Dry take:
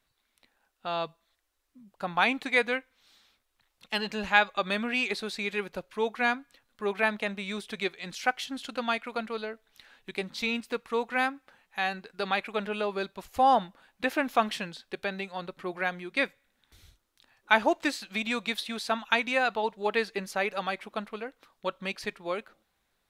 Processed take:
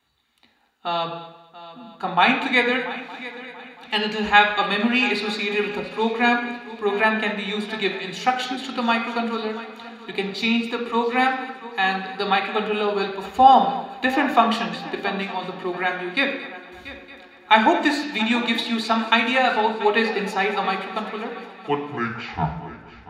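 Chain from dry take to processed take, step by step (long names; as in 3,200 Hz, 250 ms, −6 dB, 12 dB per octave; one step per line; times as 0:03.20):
turntable brake at the end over 1.76 s
echo machine with several playback heads 228 ms, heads first and third, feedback 50%, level −17 dB
convolution reverb RT60 0.70 s, pre-delay 3 ms, DRR 3.5 dB
level −1 dB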